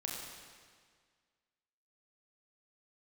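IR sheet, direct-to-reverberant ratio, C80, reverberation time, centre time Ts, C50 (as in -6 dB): -2.0 dB, 1.5 dB, 1.8 s, 94 ms, 0.5 dB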